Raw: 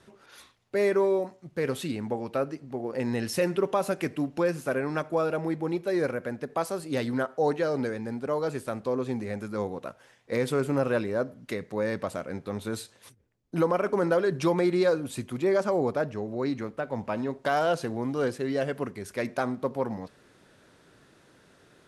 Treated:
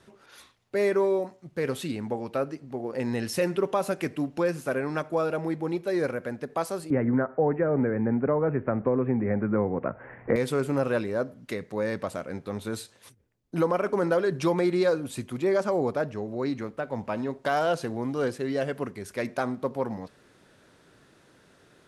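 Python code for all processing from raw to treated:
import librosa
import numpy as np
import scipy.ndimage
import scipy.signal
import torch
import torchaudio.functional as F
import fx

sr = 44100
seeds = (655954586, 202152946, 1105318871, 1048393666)

y = fx.chain(x, sr, fx.steep_lowpass(hz=2200.0, slope=48),
    fx.low_shelf(hz=390.0, db=7.0),
    fx.band_squash(depth_pct=100), at=(6.9, 10.36))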